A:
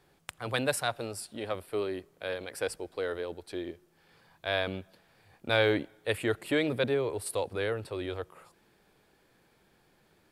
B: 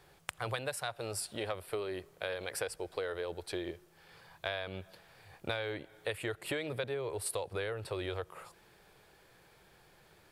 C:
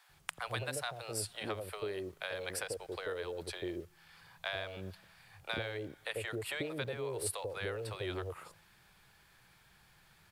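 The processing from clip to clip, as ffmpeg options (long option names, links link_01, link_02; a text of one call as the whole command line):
ffmpeg -i in.wav -af "equalizer=frequency=250:width_type=o:width=0.69:gain=-11,acompressor=threshold=-38dB:ratio=12,volume=5dB" out.wav
ffmpeg -i in.wav -filter_complex "[0:a]acrossover=split=600[link_01][link_02];[link_01]adelay=90[link_03];[link_03][link_02]amix=inputs=2:normalize=0,acrossover=split=270|650|6600[link_04][link_05][link_06][link_07];[link_05]aeval=exprs='val(0)*gte(abs(val(0)),0.00112)':channel_layout=same[link_08];[link_04][link_08][link_06][link_07]amix=inputs=4:normalize=0" out.wav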